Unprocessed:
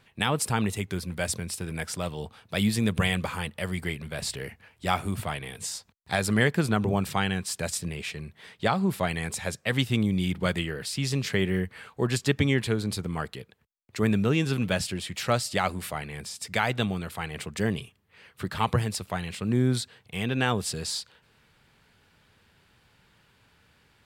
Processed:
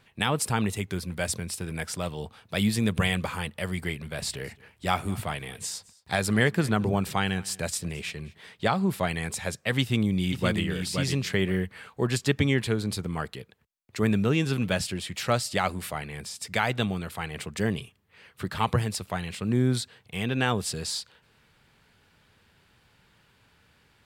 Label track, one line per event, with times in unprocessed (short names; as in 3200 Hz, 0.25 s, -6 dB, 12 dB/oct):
4.060000	8.380000	echo 0.217 s -23 dB
9.800000	10.620000	echo throw 0.52 s, feedback 15%, level -5.5 dB